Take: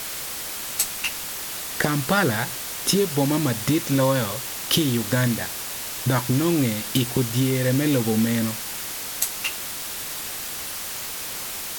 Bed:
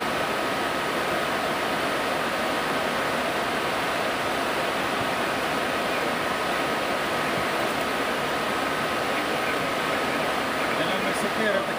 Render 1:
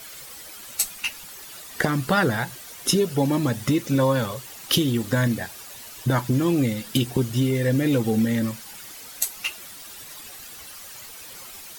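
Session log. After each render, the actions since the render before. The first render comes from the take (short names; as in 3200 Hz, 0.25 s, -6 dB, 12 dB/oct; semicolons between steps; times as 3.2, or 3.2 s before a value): denoiser 12 dB, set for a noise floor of -32 dBFS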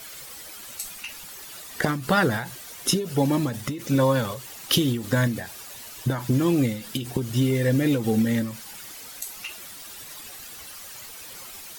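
ending taper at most 100 dB/s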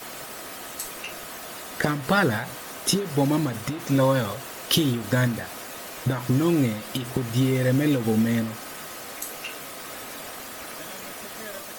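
add bed -15 dB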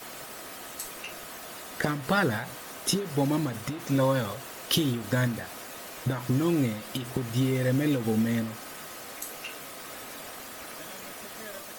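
gain -4 dB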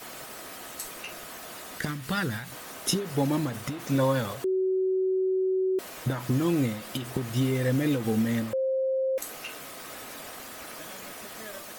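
1.78–2.52 bell 630 Hz -10.5 dB 2 oct; 4.44–5.79 bleep 376 Hz -22.5 dBFS; 8.53–9.18 bleep 528 Hz -23.5 dBFS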